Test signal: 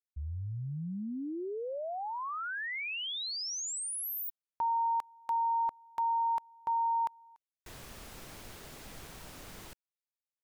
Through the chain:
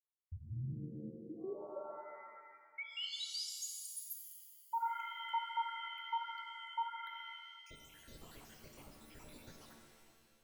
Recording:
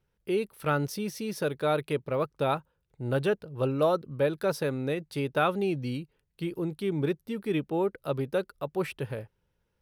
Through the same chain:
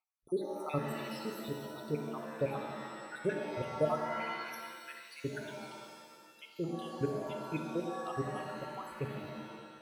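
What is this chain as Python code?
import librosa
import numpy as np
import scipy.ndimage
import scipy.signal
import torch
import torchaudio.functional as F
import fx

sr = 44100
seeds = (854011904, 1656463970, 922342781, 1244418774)

y = fx.spec_dropout(x, sr, seeds[0], share_pct=83)
y = fx.rev_shimmer(y, sr, seeds[1], rt60_s=1.7, semitones=7, shimmer_db=-2, drr_db=3.0)
y = F.gain(torch.from_numpy(y), -4.5).numpy()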